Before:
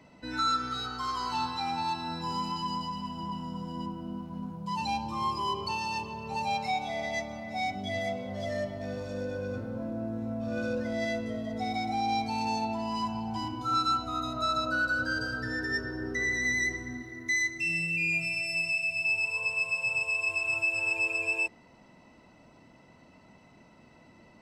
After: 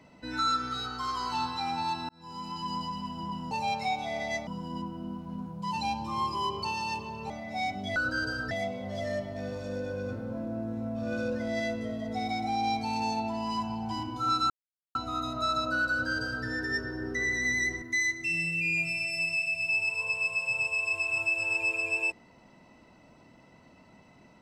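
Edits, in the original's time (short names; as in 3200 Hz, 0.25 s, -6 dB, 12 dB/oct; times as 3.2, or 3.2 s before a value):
2.09–2.79 fade in
6.34–7.3 move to 3.51
13.95 insert silence 0.45 s
14.9–15.45 copy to 7.96
16.82–17.18 cut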